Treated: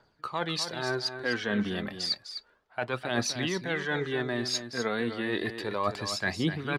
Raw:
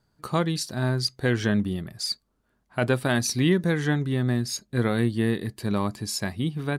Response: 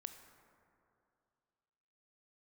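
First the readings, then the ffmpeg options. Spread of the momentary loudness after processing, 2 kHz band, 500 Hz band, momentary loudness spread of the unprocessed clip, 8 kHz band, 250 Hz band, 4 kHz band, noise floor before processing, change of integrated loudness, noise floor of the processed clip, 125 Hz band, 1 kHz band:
4 LU, 0.0 dB, −3.5 dB, 7 LU, −5.0 dB, −7.5 dB, −0.5 dB, −72 dBFS, −5.0 dB, −66 dBFS, −12.0 dB, −1.0 dB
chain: -filter_complex "[0:a]acrossover=split=390 5000:gain=0.178 1 0.1[link_01][link_02][link_03];[link_01][link_02][link_03]amix=inputs=3:normalize=0,areverse,acompressor=threshold=-37dB:ratio=6,areverse,aphaser=in_gain=1:out_gain=1:delay=4.6:decay=0.46:speed=0.31:type=triangular,aecho=1:1:253:0.335,volume=9dB"

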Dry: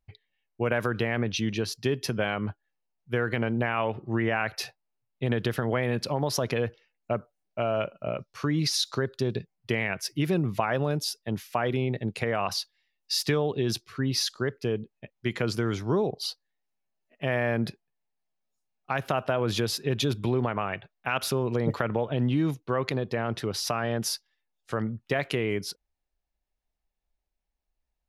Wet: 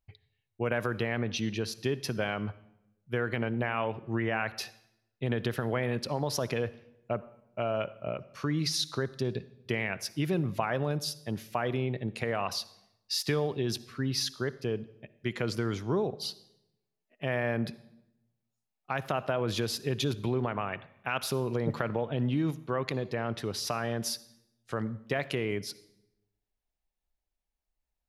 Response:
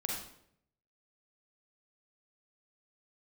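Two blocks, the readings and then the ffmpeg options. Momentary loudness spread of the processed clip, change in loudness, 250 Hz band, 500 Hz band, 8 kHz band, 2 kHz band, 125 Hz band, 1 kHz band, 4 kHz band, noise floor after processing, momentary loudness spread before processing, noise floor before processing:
8 LU, −3.5 dB, −3.5 dB, −3.5 dB, −3.5 dB, −3.5 dB, −3.5 dB, −3.5 dB, −3.5 dB, −85 dBFS, 7 LU, −82 dBFS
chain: -filter_complex "[0:a]asplit=2[link_01][link_02];[1:a]atrim=start_sample=2205,asetrate=33075,aresample=44100[link_03];[link_02][link_03]afir=irnorm=-1:irlink=0,volume=-20dB[link_04];[link_01][link_04]amix=inputs=2:normalize=0,volume=-4.5dB"

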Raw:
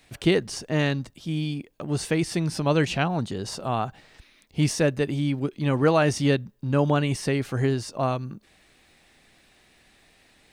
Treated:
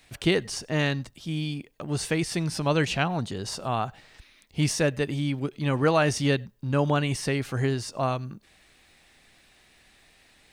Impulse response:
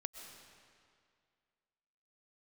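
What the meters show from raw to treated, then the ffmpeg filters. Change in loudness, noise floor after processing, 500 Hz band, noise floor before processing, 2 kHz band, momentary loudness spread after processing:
−1.5 dB, −60 dBFS, −2.5 dB, −60 dBFS, +0.5 dB, 9 LU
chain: -filter_complex "[0:a]equalizer=frequency=290:width_type=o:width=2.9:gain=-4[link_01];[1:a]atrim=start_sample=2205,atrim=end_sample=4410[link_02];[link_01][link_02]afir=irnorm=-1:irlink=0,volume=4.5dB"

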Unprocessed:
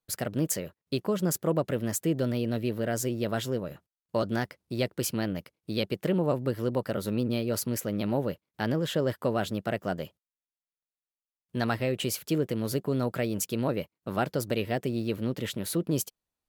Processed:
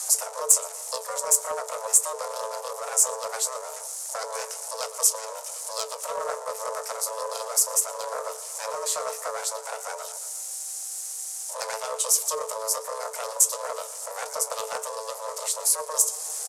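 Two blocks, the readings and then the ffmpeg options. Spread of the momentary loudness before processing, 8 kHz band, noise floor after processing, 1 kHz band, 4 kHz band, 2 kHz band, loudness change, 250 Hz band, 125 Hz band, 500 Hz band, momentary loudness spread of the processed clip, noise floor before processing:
6 LU, +16.0 dB, −38 dBFS, +5.5 dB, +3.5 dB, −1.5 dB, +4.0 dB, below −35 dB, below −35 dB, −2.5 dB, 12 LU, below −85 dBFS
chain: -filter_complex "[0:a]aeval=exprs='val(0)+0.5*0.0158*sgn(val(0))':channel_layout=same,asplit=2[link_01][link_02];[link_02]adelay=118,lowpass=frequency=3400:poles=1,volume=-16dB,asplit=2[link_03][link_04];[link_04]adelay=118,lowpass=frequency=3400:poles=1,volume=0.55,asplit=2[link_05][link_06];[link_06]adelay=118,lowpass=frequency=3400:poles=1,volume=0.55,asplit=2[link_07][link_08];[link_08]adelay=118,lowpass=frequency=3400:poles=1,volume=0.55,asplit=2[link_09][link_10];[link_10]adelay=118,lowpass=frequency=3400:poles=1,volume=0.55[link_11];[link_03][link_05][link_07][link_09][link_11]amix=inputs=5:normalize=0[link_12];[link_01][link_12]amix=inputs=2:normalize=0,flanger=delay=10:depth=8.8:regen=54:speed=1.4:shape=triangular,aeval=exprs='val(0)*sin(2*PI*330*n/s)':channel_layout=same,asplit=2[link_13][link_14];[link_14]acompressor=threshold=-48dB:ratio=4,volume=2.5dB[link_15];[link_13][link_15]amix=inputs=2:normalize=0,aeval=exprs='0.2*(cos(1*acos(clip(val(0)/0.2,-1,1)))-cos(1*PI/2))+0.0891*(cos(2*acos(clip(val(0)/0.2,-1,1)))-cos(2*PI/2))+0.02*(cos(6*acos(clip(val(0)/0.2,-1,1)))-cos(6*PI/2))+0.00501*(cos(8*acos(clip(val(0)/0.2,-1,1)))-cos(8*PI/2))':channel_layout=same,lowpass=frequency=10000:width=0.5412,lowpass=frequency=10000:width=1.3066,bass=frequency=250:gain=2,treble=frequency=4000:gain=7,afreqshift=440,asoftclip=type=tanh:threshold=-17.5dB,highpass=frequency=100:poles=1,highshelf=frequency=4900:width_type=q:width=1.5:gain=13,volume=-1.5dB"

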